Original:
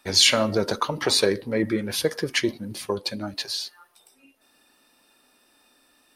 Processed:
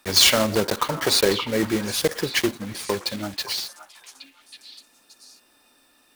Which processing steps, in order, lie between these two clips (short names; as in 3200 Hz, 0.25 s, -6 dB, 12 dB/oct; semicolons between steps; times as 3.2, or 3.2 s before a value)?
block floating point 3-bit; on a send: delay with a stepping band-pass 0.572 s, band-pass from 1100 Hz, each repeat 1.4 oct, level -8.5 dB; on the sum: gain +1 dB